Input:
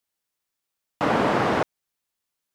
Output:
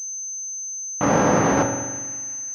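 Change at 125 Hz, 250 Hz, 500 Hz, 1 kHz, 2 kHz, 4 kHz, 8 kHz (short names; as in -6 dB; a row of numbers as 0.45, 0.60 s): +6.5, +5.0, +3.5, +2.0, +1.0, -3.5, +27.5 dB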